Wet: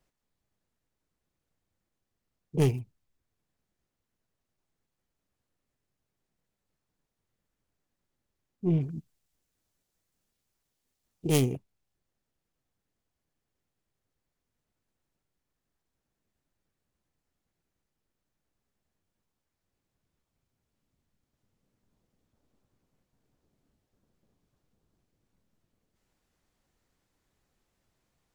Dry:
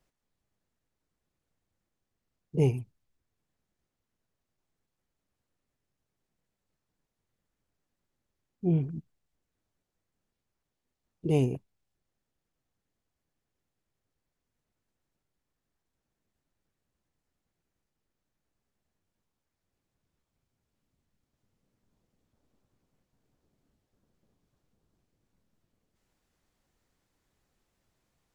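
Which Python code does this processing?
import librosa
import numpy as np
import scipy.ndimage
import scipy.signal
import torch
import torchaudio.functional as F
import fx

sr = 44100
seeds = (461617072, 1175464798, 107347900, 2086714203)

y = fx.tracing_dist(x, sr, depth_ms=0.42)
y = fx.high_shelf(y, sr, hz=3400.0, db=10.0, at=(8.8, 11.4), fade=0.02)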